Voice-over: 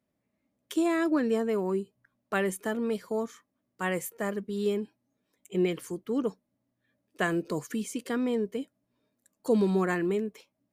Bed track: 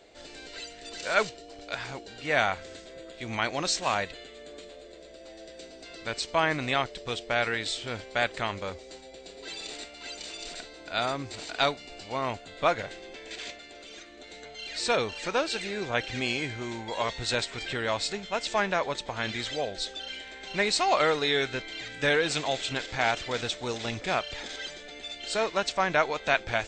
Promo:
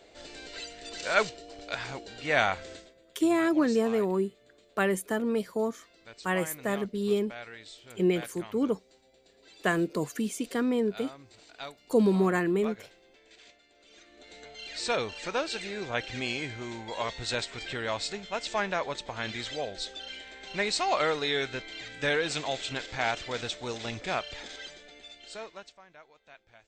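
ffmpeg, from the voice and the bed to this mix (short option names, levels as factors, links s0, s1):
-filter_complex "[0:a]adelay=2450,volume=1.19[s0];[1:a]volume=4.47,afade=t=out:st=2.72:d=0.22:silence=0.158489,afade=t=in:st=13.76:d=0.68:silence=0.223872,afade=t=out:st=24.24:d=1.57:silence=0.0501187[s1];[s0][s1]amix=inputs=2:normalize=0"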